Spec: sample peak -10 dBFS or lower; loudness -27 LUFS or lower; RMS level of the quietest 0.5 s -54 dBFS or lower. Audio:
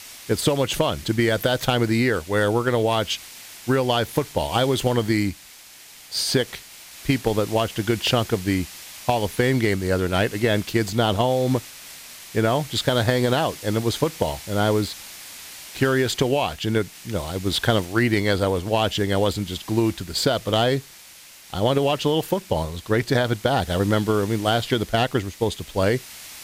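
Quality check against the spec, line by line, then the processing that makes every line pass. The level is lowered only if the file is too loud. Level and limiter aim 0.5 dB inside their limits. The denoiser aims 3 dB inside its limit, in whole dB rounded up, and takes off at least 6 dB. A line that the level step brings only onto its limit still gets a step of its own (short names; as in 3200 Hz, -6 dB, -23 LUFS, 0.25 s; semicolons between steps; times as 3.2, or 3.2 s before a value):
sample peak -8.0 dBFS: fail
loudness -22.5 LUFS: fail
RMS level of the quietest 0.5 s -46 dBFS: fail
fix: denoiser 6 dB, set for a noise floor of -46 dBFS; gain -5 dB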